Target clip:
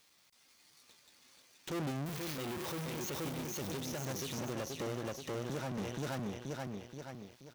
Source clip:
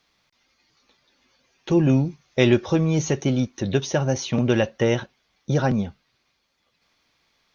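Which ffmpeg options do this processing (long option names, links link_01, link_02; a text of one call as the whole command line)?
ffmpeg -i in.wav -filter_complex "[0:a]asettb=1/sr,asplit=3[link_01][link_02][link_03];[link_01]atrim=end=2.064[link_04];[link_02]atrim=start=2.06:end=3.1,asetpts=PTS-STARTPTS,afade=type=in:duration=0.004:curve=qsin,afade=type=out:start_time=1.036:duration=0.004:curve=qsin,aeval=exprs='val(0)+0.5*0.1*sgn(val(0))':channel_layout=same[link_05];[link_03]atrim=start=3.096[link_06];[link_04][link_05]acrossfade=duration=0.004:curve1=hsin:curve2=qsin[link_07];[link_07][link_06]acrossfade=duration=0.004:curve1=qsin:curve2=hsin,asplit=2[link_08][link_09];[link_09]aecho=0:1:478|956|1434|1912|2390:0.596|0.232|0.0906|0.0353|0.0138[link_10];[link_08][link_10]amix=inputs=2:normalize=0,asettb=1/sr,asplit=3[link_11][link_12][link_13];[link_11]atrim=end=4.414[link_14];[link_12]atrim=start=4.41:end=5.78,asetpts=PTS-STARTPTS,afade=type=in:duration=0.004:curve=qsin,afade=type=out:start_time=1.366:duration=0.004:curve=qsin,acrossover=split=370|1100[link_15][link_16][link_17];[link_15]acompressor=threshold=-28dB:ratio=4[link_18];[link_16]acompressor=threshold=-29dB:ratio=4[link_19];[link_17]acompressor=threshold=-42dB:ratio=4[link_20];[link_18][link_19][link_20]amix=inputs=3:normalize=0[link_21];[link_13]atrim=start=5.776[link_22];[link_14][link_21]acrossfade=duration=0.004:curve1=hsin:curve2=qsin[link_23];[link_23][link_22]acrossfade=duration=0.004:curve1=qsin:curve2=hsin,aeval=exprs='(tanh(12.6*val(0)+0.6)-tanh(0.6))/12.6':channel_layout=same,aeval=exprs='max(val(0),0)':channel_layout=same,aemphasis=mode=production:type=50kf,acrossover=split=3800[link_24][link_25];[link_25]acompressor=threshold=-37dB:ratio=4:attack=1:release=60[link_26];[link_24][link_26]amix=inputs=2:normalize=0,alimiter=level_in=7dB:limit=-24dB:level=0:latency=1:release=308,volume=-7dB,highpass=frequency=96:poles=1,volume=3dB" out.wav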